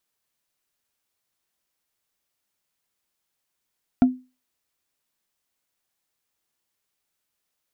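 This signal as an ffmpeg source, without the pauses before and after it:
-f lavfi -i "aevalsrc='0.376*pow(10,-3*t/0.29)*sin(2*PI*254*t)+0.119*pow(10,-3*t/0.086)*sin(2*PI*700.3*t)+0.0376*pow(10,-3*t/0.038)*sin(2*PI*1372.6*t)+0.0119*pow(10,-3*t/0.021)*sin(2*PI*2269*t)+0.00376*pow(10,-3*t/0.013)*sin(2*PI*3388.4*t)':d=0.45:s=44100"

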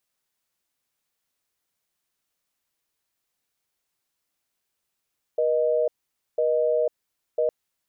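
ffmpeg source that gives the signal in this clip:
-f lavfi -i "aevalsrc='0.0794*(sin(2*PI*480*t)+sin(2*PI*620*t))*clip(min(mod(t,1),0.5-mod(t,1))/0.005,0,1)':d=2.11:s=44100"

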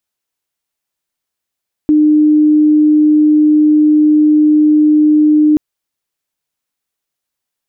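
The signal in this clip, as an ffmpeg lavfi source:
-f lavfi -i "aevalsrc='0.531*sin(2*PI*303*t)':d=3.68:s=44100"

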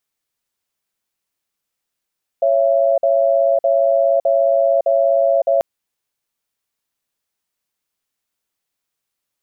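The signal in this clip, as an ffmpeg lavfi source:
-f lavfi -i "aevalsrc='0.188*(sin(2*PI*554*t)+sin(2*PI*671*t))*clip(min(mod(t,0.61),0.56-mod(t,0.61))/0.005,0,1)':d=3.19:s=44100"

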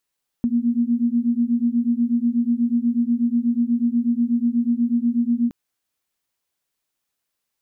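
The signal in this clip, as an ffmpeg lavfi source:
-f lavfi -i "aevalsrc='0.1*(sin(2*PI*233*t)+sin(2*PI*241.2*t))':d=5.07:s=44100"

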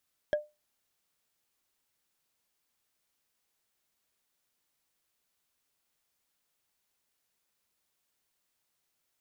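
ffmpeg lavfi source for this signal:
-f lavfi -i "aevalsrc='0.0891*pow(10,-3*t/0.23)*sin(2*PI*599*t)+0.0335*pow(10,-3*t/0.068)*sin(2*PI*1651.4*t)+0.0126*pow(10,-3*t/0.03)*sin(2*PI*3237*t)+0.00473*pow(10,-3*t/0.017)*sin(2*PI*5350.9*t)+0.00178*pow(10,-3*t/0.01)*sin(2*PI*7990.7*t)':d=0.45:s=44100"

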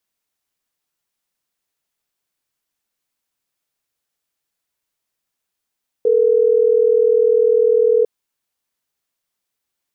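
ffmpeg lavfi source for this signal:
-f lavfi -i "aevalsrc='0.211*(sin(2*PI*440*t)+sin(2*PI*480*t))*clip(min(mod(t,6),2-mod(t,6))/0.005,0,1)':d=3.12:s=44100"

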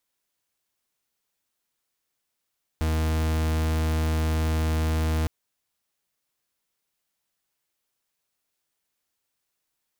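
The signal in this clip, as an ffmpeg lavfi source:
-f lavfi -i "aevalsrc='0.0631*(2*lt(mod(79.2*t,1),0.42)-1)':d=2.46:s=44100"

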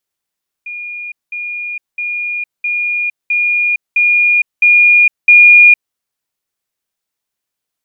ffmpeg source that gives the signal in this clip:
-f lavfi -i "aevalsrc='pow(10,(-22.5+3*floor(t/0.66))/20)*sin(2*PI*2430*t)*clip(min(mod(t,0.66),0.46-mod(t,0.66))/0.005,0,1)':d=5.28:s=44100"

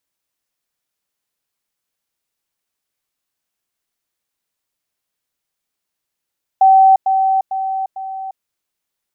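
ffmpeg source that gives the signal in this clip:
-f lavfi -i "aevalsrc='pow(10,(-5.5-6*floor(t/0.45))/20)*sin(2*PI*768*t)*clip(min(mod(t,0.45),0.35-mod(t,0.45))/0.005,0,1)':d=1.8:s=44100"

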